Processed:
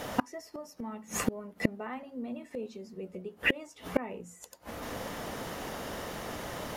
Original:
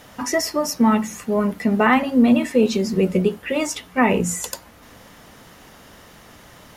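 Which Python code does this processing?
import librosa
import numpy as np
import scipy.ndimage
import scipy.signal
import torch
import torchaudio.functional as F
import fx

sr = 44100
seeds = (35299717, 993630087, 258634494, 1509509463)

y = fx.peak_eq(x, sr, hz=530.0, db=6.5, octaves=1.9)
y = fx.gate_flip(y, sr, shuts_db=-16.0, range_db=-31)
y = y * 10.0 ** (4.0 / 20.0)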